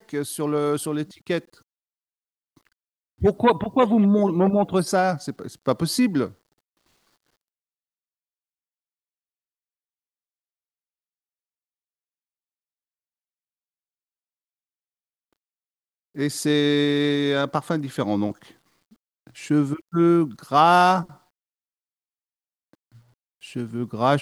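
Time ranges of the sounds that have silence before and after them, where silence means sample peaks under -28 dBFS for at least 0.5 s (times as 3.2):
3.22–6.26
16.18–18.31
19.43–21.02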